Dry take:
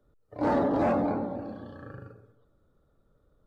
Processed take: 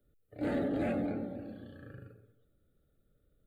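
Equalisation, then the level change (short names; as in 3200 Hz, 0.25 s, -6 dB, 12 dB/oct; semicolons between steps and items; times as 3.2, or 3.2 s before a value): high shelf 3600 Hz +10.5 dB; fixed phaser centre 2400 Hz, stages 4; -4.5 dB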